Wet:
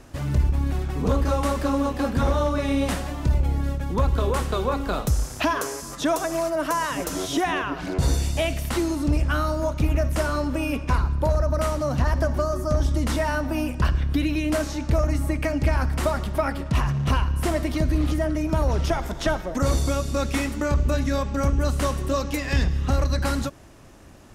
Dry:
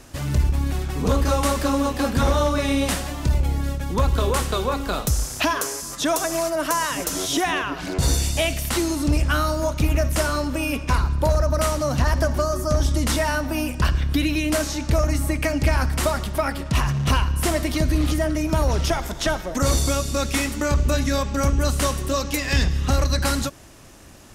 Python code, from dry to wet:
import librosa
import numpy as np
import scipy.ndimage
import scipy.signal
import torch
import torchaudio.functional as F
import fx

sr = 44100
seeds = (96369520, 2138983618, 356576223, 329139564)

p1 = fx.high_shelf(x, sr, hz=2500.0, db=-8.5)
p2 = fx.rider(p1, sr, range_db=10, speed_s=0.5)
p3 = p1 + (p2 * 10.0 ** (0.0 / 20.0))
y = p3 * 10.0 ** (-7.0 / 20.0)